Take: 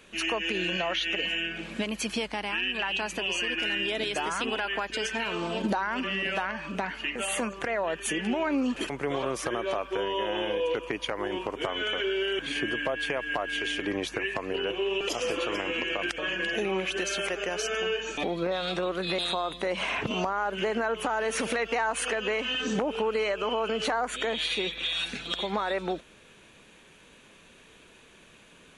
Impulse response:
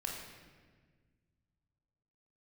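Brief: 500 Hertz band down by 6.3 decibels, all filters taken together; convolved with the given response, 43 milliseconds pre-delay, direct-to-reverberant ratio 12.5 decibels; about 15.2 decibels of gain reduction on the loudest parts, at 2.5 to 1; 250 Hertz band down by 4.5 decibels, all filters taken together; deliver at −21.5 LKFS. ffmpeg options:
-filter_complex "[0:a]equalizer=frequency=250:width_type=o:gain=-3.5,equalizer=frequency=500:width_type=o:gain=-7,acompressor=threshold=-51dB:ratio=2.5,asplit=2[link_01][link_02];[1:a]atrim=start_sample=2205,adelay=43[link_03];[link_02][link_03]afir=irnorm=-1:irlink=0,volume=-13.5dB[link_04];[link_01][link_04]amix=inputs=2:normalize=0,volume=24dB"

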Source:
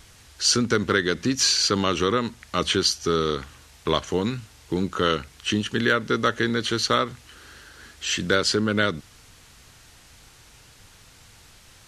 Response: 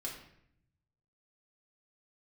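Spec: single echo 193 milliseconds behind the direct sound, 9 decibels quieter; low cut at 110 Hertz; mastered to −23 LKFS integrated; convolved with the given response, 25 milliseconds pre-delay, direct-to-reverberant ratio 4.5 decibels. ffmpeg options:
-filter_complex "[0:a]highpass=110,aecho=1:1:193:0.355,asplit=2[link_01][link_02];[1:a]atrim=start_sample=2205,adelay=25[link_03];[link_02][link_03]afir=irnorm=-1:irlink=0,volume=-4dB[link_04];[link_01][link_04]amix=inputs=2:normalize=0,volume=-1.5dB"

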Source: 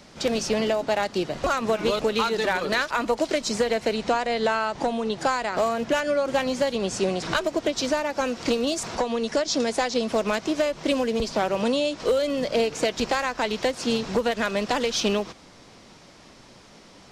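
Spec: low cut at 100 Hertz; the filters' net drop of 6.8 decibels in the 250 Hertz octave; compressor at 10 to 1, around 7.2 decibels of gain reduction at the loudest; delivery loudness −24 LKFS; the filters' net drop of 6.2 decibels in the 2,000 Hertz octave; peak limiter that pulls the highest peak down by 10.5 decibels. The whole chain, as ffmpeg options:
ffmpeg -i in.wav -af "highpass=100,equalizer=frequency=250:width_type=o:gain=-8,equalizer=frequency=2000:width_type=o:gain=-8.5,acompressor=threshold=-28dB:ratio=10,volume=13dB,alimiter=limit=-15.5dB:level=0:latency=1" out.wav

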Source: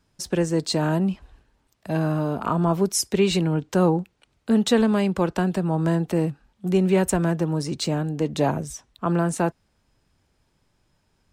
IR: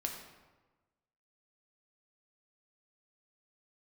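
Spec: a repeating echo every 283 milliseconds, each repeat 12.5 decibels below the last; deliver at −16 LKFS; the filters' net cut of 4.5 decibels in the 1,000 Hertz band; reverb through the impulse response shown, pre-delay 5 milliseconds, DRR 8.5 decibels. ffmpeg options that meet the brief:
-filter_complex "[0:a]equalizer=frequency=1000:width_type=o:gain=-6,aecho=1:1:283|566|849:0.237|0.0569|0.0137,asplit=2[link_01][link_02];[1:a]atrim=start_sample=2205,adelay=5[link_03];[link_02][link_03]afir=irnorm=-1:irlink=0,volume=-9.5dB[link_04];[link_01][link_04]amix=inputs=2:normalize=0,volume=6.5dB"

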